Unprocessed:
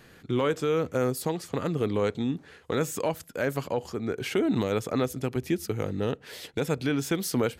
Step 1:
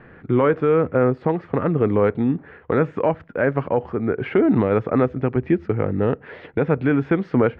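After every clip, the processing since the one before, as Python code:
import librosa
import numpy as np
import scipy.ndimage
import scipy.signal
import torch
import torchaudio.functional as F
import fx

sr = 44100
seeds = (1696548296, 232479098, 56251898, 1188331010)

y = scipy.signal.sosfilt(scipy.signal.butter(4, 2000.0, 'lowpass', fs=sr, output='sos'), x)
y = F.gain(torch.from_numpy(y), 8.5).numpy()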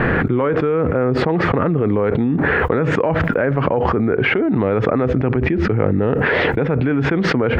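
y = fx.env_flatten(x, sr, amount_pct=100)
y = F.gain(torch.from_numpy(y), -3.0).numpy()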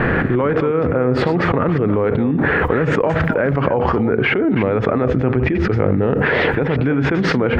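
y = fx.reverse_delay(x, sr, ms=178, wet_db=-10)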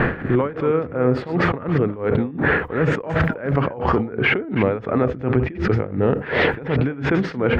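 y = x * (1.0 - 0.87 / 2.0 + 0.87 / 2.0 * np.cos(2.0 * np.pi * 2.8 * (np.arange(len(x)) / sr)))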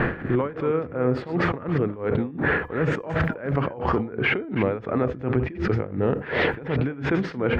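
y = fx.comb_fb(x, sr, f0_hz=340.0, decay_s=0.33, harmonics='odd', damping=0.0, mix_pct=40)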